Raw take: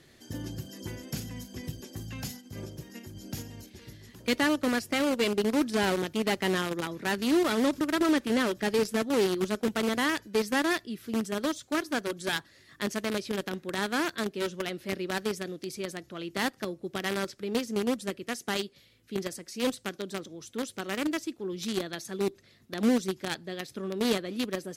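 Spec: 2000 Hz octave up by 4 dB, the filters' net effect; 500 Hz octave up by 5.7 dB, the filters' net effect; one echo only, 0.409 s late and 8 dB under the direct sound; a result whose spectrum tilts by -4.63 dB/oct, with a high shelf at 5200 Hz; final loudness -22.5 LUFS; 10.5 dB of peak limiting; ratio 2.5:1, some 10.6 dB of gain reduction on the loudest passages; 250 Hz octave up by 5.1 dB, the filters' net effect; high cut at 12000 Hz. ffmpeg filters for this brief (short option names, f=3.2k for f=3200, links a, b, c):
-af "lowpass=12k,equalizer=f=250:t=o:g=4.5,equalizer=f=500:t=o:g=5.5,equalizer=f=2k:t=o:g=5,highshelf=f=5.2k:g=-3.5,acompressor=threshold=-32dB:ratio=2.5,alimiter=level_in=4dB:limit=-24dB:level=0:latency=1,volume=-4dB,aecho=1:1:409:0.398,volume=15dB"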